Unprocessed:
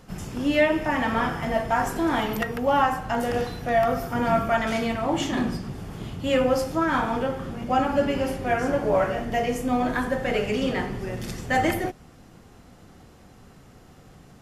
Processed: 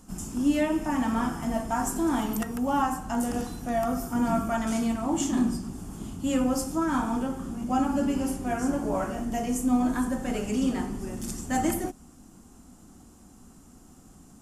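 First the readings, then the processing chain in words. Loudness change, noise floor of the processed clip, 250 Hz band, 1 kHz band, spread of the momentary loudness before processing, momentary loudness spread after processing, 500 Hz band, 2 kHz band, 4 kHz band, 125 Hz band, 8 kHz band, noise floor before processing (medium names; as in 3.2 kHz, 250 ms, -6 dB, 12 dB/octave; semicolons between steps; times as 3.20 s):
-3.0 dB, -53 dBFS, +1.5 dB, -5.5 dB, 8 LU, 7 LU, -8.0 dB, -10.0 dB, -7.5 dB, -5.0 dB, +5.5 dB, -51 dBFS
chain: graphic EQ 125/250/500/2000/4000/8000 Hz -10/+7/-11/-11/-8/+10 dB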